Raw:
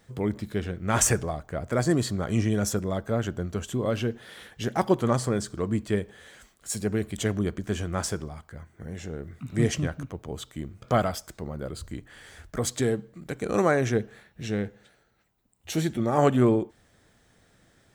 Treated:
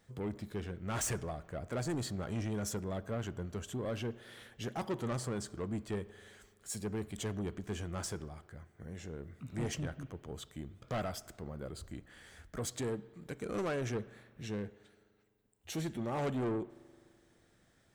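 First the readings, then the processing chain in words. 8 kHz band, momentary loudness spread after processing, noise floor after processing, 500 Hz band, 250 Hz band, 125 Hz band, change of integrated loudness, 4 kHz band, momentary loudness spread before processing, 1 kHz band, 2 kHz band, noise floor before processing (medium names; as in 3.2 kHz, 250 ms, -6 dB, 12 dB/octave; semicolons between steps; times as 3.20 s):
-11.5 dB, 13 LU, -69 dBFS, -12.0 dB, -12.0 dB, -11.0 dB, -12.0 dB, -9.5 dB, 16 LU, -13.0 dB, -11.5 dB, -63 dBFS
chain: saturation -23 dBFS, distortion -9 dB; spring tank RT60 2.2 s, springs 42 ms, chirp 50 ms, DRR 19.5 dB; trim -8 dB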